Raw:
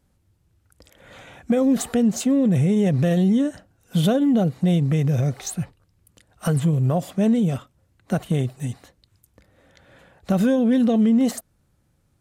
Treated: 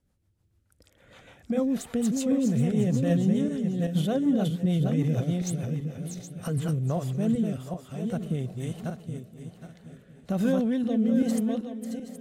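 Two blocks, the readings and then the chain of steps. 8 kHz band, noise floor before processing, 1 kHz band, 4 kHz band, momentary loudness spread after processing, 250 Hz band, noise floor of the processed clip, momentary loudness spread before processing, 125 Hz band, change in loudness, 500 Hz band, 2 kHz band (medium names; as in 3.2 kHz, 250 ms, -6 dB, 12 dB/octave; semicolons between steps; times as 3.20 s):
-6.0 dB, -65 dBFS, -7.0 dB, -6.5 dB, 13 LU, -5.5 dB, -68 dBFS, 11 LU, -5.5 dB, -6.5 dB, -6.0 dB, -7.0 dB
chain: backward echo that repeats 387 ms, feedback 47%, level -4 dB; shuffle delay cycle 1016 ms, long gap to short 3:1, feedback 32%, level -17 dB; rotary cabinet horn 6.7 Hz, later 1.1 Hz, at 6.13 s; trim -6 dB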